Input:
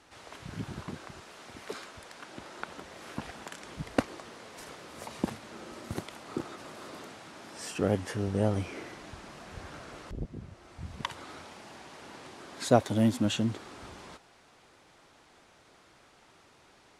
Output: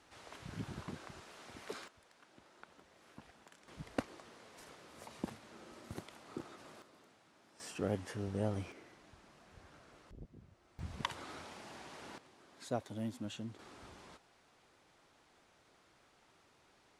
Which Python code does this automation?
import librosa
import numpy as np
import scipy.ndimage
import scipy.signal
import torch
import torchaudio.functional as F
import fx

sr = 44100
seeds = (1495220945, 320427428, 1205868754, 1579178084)

y = fx.gain(x, sr, db=fx.steps((0.0, -5.5), (1.88, -17.5), (3.68, -10.0), (6.82, -19.0), (7.6, -8.5), (8.72, -15.0), (10.79, -3.0), (12.18, -15.5), (13.59, -8.5)))